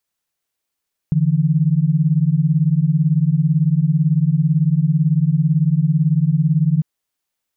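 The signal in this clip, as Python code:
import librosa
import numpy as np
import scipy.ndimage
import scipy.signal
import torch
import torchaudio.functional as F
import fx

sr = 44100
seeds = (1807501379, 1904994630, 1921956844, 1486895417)

y = fx.chord(sr, length_s=5.7, notes=(50, 52), wave='sine', level_db=-15.5)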